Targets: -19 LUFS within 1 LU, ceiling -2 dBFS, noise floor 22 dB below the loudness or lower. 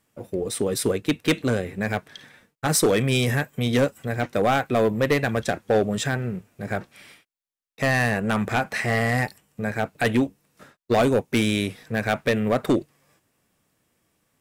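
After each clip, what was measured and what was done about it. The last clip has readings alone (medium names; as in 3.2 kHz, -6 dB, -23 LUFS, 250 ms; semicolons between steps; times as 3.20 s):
clipped samples 0.9%; clipping level -13.5 dBFS; loudness -24.0 LUFS; peak level -13.5 dBFS; loudness target -19.0 LUFS
-> clip repair -13.5 dBFS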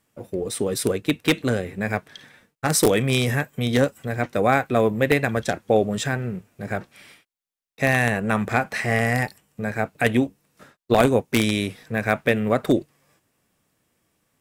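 clipped samples 0.0%; loudness -22.5 LUFS; peak level -4.5 dBFS; loudness target -19.0 LUFS
-> trim +3.5 dB; peak limiter -2 dBFS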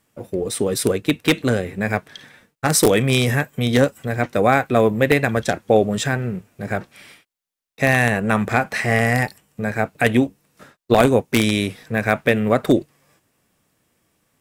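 loudness -19.5 LUFS; peak level -2.0 dBFS; noise floor -73 dBFS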